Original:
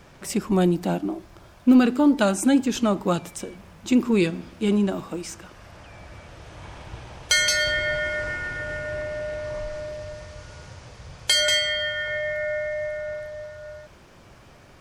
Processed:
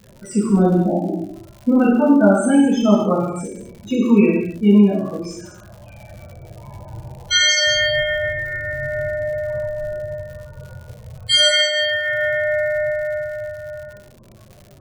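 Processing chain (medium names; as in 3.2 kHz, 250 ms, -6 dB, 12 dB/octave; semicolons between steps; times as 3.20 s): loudest bins only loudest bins 16; gated-style reverb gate 310 ms falling, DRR -8 dB; crackle 140 per s -32 dBFS; trim -2 dB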